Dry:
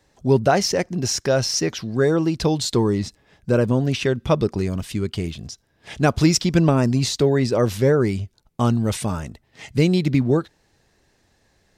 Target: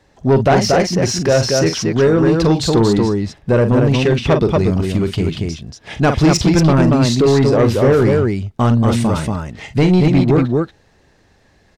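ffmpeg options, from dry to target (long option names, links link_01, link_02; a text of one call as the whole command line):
ffmpeg -i in.wav -filter_complex "[0:a]highshelf=frequency=5600:gain=-11,asplit=2[link_01][link_02];[link_02]aecho=0:1:43.73|233.2:0.316|0.631[link_03];[link_01][link_03]amix=inputs=2:normalize=0,asoftclip=type=tanh:threshold=-13.5dB,volume=7.5dB" out.wav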